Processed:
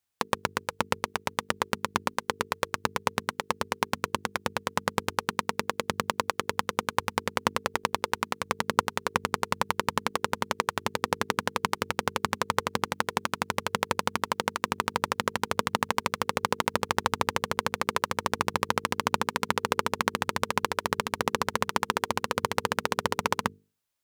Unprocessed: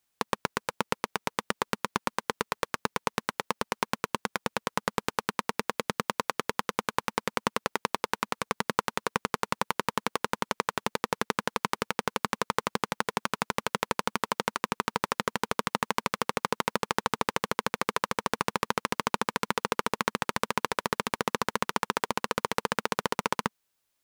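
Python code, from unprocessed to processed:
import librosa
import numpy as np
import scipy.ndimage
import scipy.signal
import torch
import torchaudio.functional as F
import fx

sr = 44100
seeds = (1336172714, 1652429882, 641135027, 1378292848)

y = fx.peak_eq(x, sr, hz=93.0, db=13.0, octaves=0.35)
y = fx.hum_notches(y, sr, base_hz=50, count=9)
y = fx.upward_expand(y, sr, threshold_db=-41.0, expansion=1.5)
y = F.gain(torch.from_numpy(y), 3.5).numpy()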